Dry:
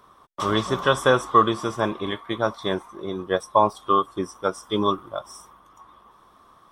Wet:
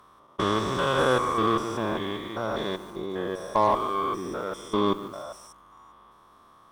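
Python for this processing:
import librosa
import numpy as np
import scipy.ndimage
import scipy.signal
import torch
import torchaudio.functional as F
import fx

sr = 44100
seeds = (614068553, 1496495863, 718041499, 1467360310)

y = fx.spec_steps(x, sr, hold_ms=200)
y = fx.cheby_harmonics(y, sr, harmonics=(8,), levels_db=(-28,), full_scale_db=-8.5)
y = fx.echo_crushed(y, sr, ms=147, feedback_pct=35, bits=7, wet_db=-15.0)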